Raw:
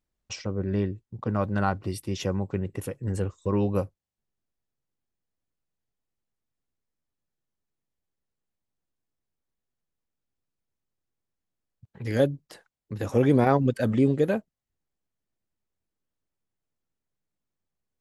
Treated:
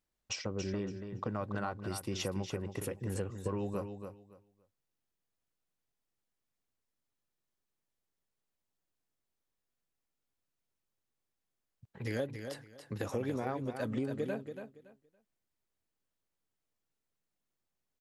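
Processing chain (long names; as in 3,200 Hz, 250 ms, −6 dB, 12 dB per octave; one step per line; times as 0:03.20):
low-shelf EQ 270 Hz −6.5 dB
downward compressor 6 to 1, threshold −33 dBFS, peak gain reduction 15.5 dB
repeating echo 282 ms, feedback 21%, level −8 dB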